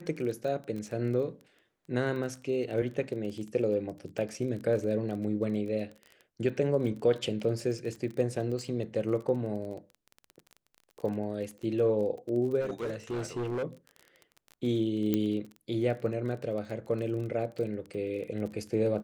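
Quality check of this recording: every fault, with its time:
crackle 24 per s -37 dBFS
12.60–13.64 s: clipped -29.5 dBFS
15.14 s: pop -15 dBFS

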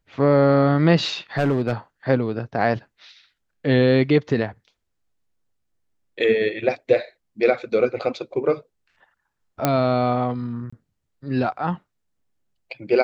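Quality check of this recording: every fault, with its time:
1.38–1.73 s: clipped -15 dBFS
9.65 s: pop -4 dBFS
10.70–10.72 s: dropout 25 ms

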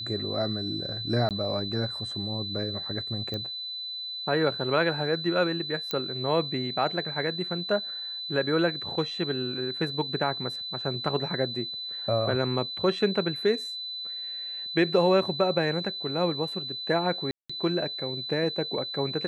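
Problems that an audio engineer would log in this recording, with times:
whine 4 kHz -33 dBFS
1.29–1.31 s: dropout 18 ms
3.34 s: pop -20 dBFS
5.91 s: pop -15 dBFS
17.31–17.50 s: dropout 185 ms

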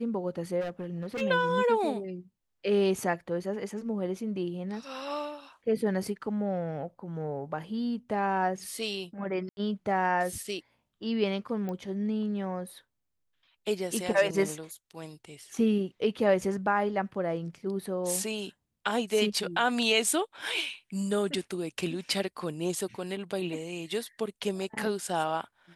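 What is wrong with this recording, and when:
0.60–1.22 s: clipped -31 dBFS
9.49–9.57 s: dropout 81 ms
11.69 s: pop -24 dBFS

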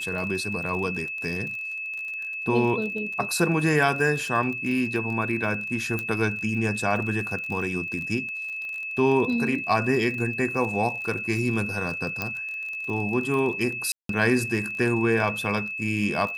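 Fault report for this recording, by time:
crackle 39 per s -32 dBFS
whine 2.6 kHz -30 dBFS
5.99 s: pop -15 dBFS
12.22 s: pop -13 dBFS
13.92–14.09 s: dropout 173 ms

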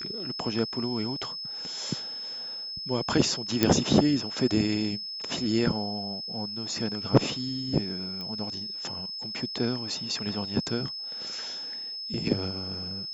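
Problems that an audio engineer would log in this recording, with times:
whine 5.2 kHz -34 dBFS
3.63 s: pop -6 dBFS
8.21 s: pop -23 dBFS

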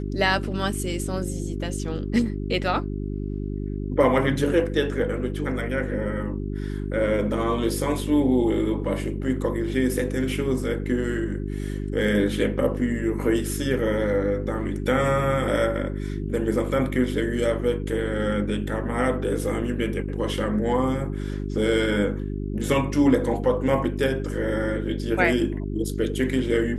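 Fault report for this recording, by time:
hum 50 Hz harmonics 8 -29 dBFS

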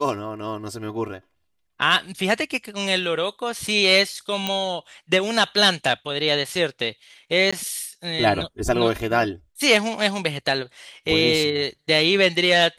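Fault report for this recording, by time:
4.47 s: pop -9 dBFS
7.51–7.53 s: dropout 15 ms

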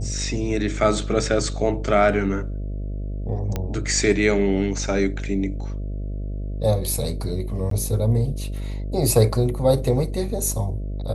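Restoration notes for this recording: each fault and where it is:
buzz 50 Hz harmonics 13 -28 dBFS
3.56 s: pop -12 dBFS
7.70–7.71 s: dropout 13 ms

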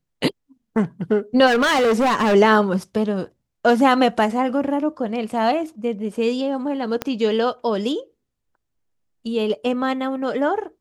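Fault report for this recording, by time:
1.46–2.35 s: clipped -14.5 dBFS
7.02 s: pop -9 dBFS

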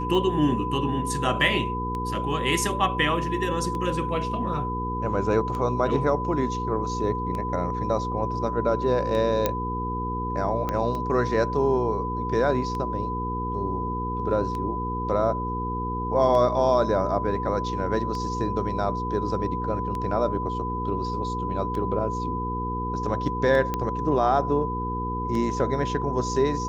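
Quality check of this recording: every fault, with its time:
hum 60 Hz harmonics 8 -31 dBFS
tick 33 1/3 rpm -20 dBFS
whine 1 kHz -29 dBFS
9.46 s: pop -8 dBFS
10.69 s: pop -14 dBFS
23.74 s: pop -13 dBFS

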